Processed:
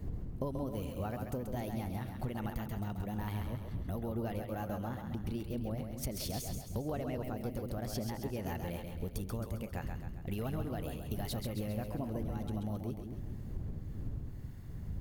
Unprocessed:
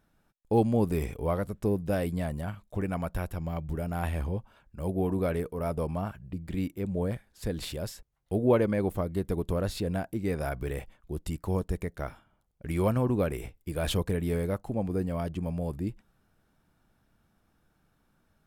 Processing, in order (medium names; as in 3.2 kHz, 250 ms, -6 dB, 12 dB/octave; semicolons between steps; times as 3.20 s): wind noise 98 Hz -41 dBFS; bass shelf 240 Hz +5.5 dB; tape speed +23%; treble shelf 3.9 kHz +7.5 dB; compression 8:1, threshold -40 dBFS, peak gain reduction 23.5 dB; two-band feedback delay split 350 Hz, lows 209 ms, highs 134 ms, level -5.5 dB; trim +4 dB